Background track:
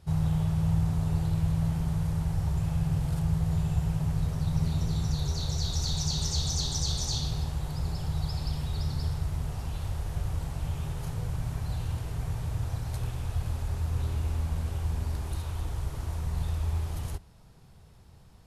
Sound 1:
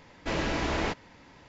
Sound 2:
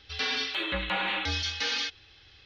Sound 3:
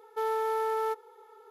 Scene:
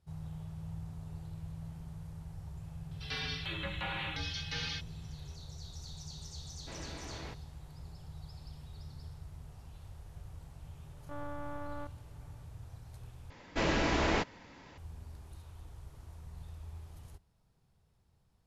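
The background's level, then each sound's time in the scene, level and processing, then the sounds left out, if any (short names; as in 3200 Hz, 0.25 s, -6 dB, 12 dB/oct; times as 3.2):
background track -17 dB
2.91 add 2 -9 dB
6.41 add 1 -17.5 dB
10.93 add 3 -11 dB + monotone LPC vocoder at 8 kHz 290 Hz
13.3 replace with 1 -0.5 dB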